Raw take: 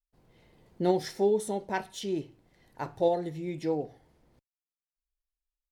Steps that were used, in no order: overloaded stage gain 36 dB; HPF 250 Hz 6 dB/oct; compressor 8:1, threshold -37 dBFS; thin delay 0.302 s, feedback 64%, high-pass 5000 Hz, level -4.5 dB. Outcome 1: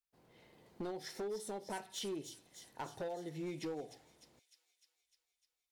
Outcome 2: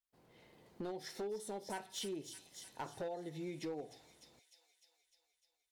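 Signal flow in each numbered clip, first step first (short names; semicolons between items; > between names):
HPF > compressor > overloaded stage > thin delay; thin delay > compressor > HPF > overloaded stage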